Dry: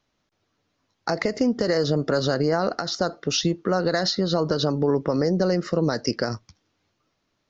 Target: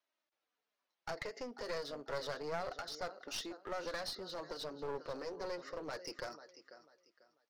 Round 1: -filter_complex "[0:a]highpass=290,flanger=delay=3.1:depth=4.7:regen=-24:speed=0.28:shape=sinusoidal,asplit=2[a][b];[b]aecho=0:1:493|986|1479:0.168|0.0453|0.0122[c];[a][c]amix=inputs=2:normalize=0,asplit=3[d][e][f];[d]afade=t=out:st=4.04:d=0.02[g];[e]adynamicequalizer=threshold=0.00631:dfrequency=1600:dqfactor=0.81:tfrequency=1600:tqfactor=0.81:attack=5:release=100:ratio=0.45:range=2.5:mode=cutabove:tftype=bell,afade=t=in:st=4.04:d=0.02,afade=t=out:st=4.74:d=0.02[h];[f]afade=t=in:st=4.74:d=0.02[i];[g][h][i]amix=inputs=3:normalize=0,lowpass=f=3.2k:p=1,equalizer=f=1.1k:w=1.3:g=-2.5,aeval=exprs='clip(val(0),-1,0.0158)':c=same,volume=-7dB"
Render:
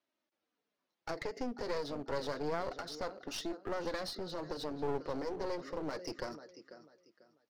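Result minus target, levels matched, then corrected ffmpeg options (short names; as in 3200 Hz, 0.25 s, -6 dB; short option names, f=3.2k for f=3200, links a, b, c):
250 Hz band +5.0 dB
-filter_complex "[0:a]highpass=630,flanger=delay=3.1:depth=4.7:regen=-24:speed=0.28:shape=sinusoidal,asplit=2[a][b];[b]aecho=0:1:493|986|1479:0.168|0.0453|0.0122[c];[a][c]amix=inputs=2:normalize=0,asplit=3[d][e][f];[d]afade=t=out:st=4.04:d=0.02[g];[e]adynamicequalizer=threshold=0.00631:dfrequency=1600:dqfactor=0.81:tfrequency=1600:tqfactor=0.81:attack=5:release=100:ratio=0.45:range=2.5:mode=cutabove:tftype=bell,afade=t=in:st=4.04:d=0.02,afade=t=out:st=4.74:d=0.02[h];[f]afade=t=in:st=4.74:d=0.02[i];[g][h][i]amix=inputs=3:normalize=0,lowpass=f=3.2k:p=1,equalizer=f=1.1k:w=1.3:g=-2.5,aeval=exprs='clip(val(0),-1,0.0158)':c=same,volume=-7dB"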